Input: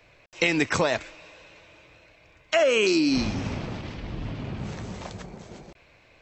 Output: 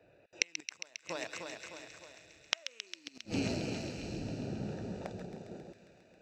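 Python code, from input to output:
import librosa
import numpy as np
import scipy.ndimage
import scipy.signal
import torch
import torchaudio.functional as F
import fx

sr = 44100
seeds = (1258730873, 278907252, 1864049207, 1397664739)

y = fx.wiener(x, sr, points=41)
y = fx.echo_feedback(y, sr, ms=305, feedback_pct=53, wet_db=-19)
y = fx.gate_flip(y, sr, shuts_db=-16.0, range_db=-41)
y = fx.highpass(y, sr, hz=430.0, slope=6)
y = fx.high_shelf(y, sr, hz=6000.0, db=12.0)
y = fx.notch(y, sr, hz=3200.0, q=14.0)
y = fx.echo_wet_highpass(y, sr, ms=135, feedback_pct=80, hz=2200.0, wet_db=-8.0)
y = F.gain(torch.from_numpy(y), 4.0).numpy()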